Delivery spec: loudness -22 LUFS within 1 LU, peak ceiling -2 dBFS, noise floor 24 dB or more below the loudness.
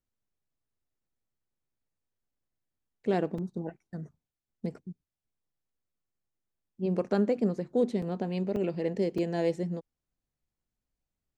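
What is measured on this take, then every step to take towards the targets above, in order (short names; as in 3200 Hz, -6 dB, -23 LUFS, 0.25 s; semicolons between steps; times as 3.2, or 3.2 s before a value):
dropouts 4; longest dropout 4.2 ms; loudness -31.0 LUFS; peak -14.5 dBFS; loudness target -22.0 LUFS
-> interpolate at 3.38/8.02/8.56/9.18, 4.2 ms; gain +9 dB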